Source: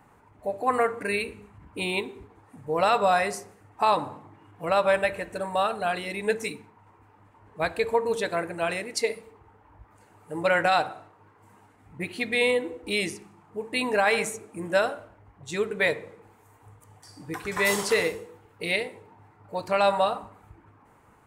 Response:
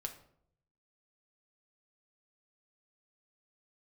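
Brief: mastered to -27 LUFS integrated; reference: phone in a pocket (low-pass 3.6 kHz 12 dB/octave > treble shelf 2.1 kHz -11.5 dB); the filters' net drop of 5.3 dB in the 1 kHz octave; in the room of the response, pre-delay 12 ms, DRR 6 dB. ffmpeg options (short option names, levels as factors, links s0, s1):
-filter_complex "[0:a]equalizer=f=1000:t=o:g=-5,asplit=2[s0][s1];[1:a]atrim=start_sample=2205,adelay=12[s2];[s1][s2]afir=irnorm=-1:irlink=0,volume=0.596[s3];[s0][s3]amix=inputs=2:normalize=0,lowpass=3600,highshelf=f=2100:g=-11.5,volume=1.33"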